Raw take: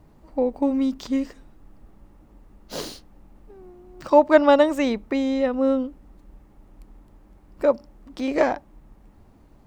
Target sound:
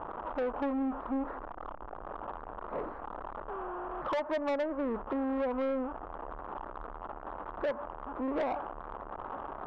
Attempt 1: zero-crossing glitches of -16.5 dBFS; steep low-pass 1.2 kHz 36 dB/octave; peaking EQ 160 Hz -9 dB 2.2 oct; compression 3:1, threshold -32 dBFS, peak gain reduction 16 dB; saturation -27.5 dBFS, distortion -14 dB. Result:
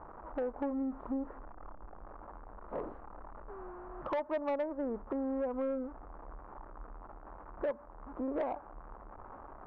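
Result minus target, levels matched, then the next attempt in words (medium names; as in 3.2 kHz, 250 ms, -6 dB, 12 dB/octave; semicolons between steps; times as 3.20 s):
zero-crossing glitches: distortion -11 dB; compression: peak gain reduction +5 dB
zero-crossing glitches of -5.5 dBFS; steep low-pass 1.2 kHz 36 dB/octave; peaking EQ 160 Hz -9 dB 2.2 oct; compression 3:1, threshold -24.5 dBFS, peak gain reduction 11 dB; saturation -27.5 dBFS, distortion -10 dB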